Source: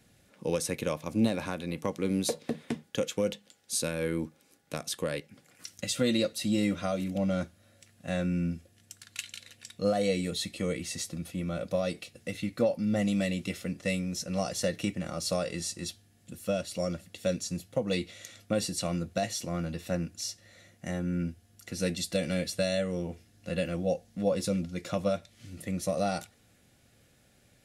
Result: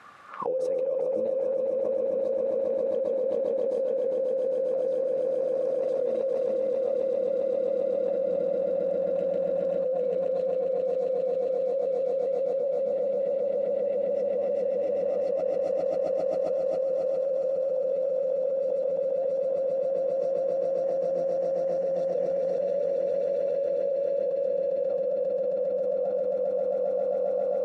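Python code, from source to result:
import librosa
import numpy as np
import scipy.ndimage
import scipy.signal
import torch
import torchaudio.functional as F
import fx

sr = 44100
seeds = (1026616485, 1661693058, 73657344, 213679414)

y = fx.auto_wah(x, sr, base_hz=530.0, top_hz=1200.0, q=14.0, full_db=-29.5, direction='down')
y = fx.echo_swell(y, sr, ms=134, loudest=8, wet_db=-3.5)
y = fx.env_flatten(y, sr, amount_pct=100)
y = y * 10.0 ** (-2.0 / 20.0)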